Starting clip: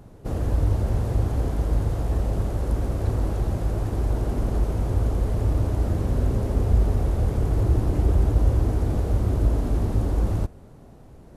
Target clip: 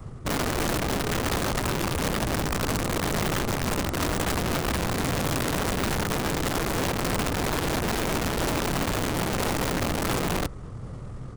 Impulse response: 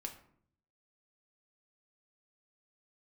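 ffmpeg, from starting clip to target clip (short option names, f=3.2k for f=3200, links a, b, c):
-filter_complex "[0:a]equalizer=f=160:t=o:w=0.33:g=10,equalizer=f=400:t=o:w=0.33:g=-5,equalizer=f=800:t=o:w=0.33:g=-3,equalizer=f=1.6k:t=o:w=0.33:g=12,equalizer=f=2.5k:t=o:w=0.33:g=5,asetrate=34006,aresample=44100,atempo=1.29684,asplit=2[a][b];[b]acompressor=threshold=-31dB:ratio=16,volume=-3dB[c];[a][c]amix=inputs=2:normalize=0,adynamicequalizer=threshold=0.0178:dfrequency=120:dqfactor=1.4:tfrequency=120:tqfactor=1.4:attack=5:release=100:ratio=0.375:range=2.5:mode=cutabove:tftype=bell,aeval=exprs='(mod(11.9*val(0)+1,2)-1)/11.9':c=same,areverse,acompressor=mode=upward:threshold=-30dB:ratio=2.5,areverse"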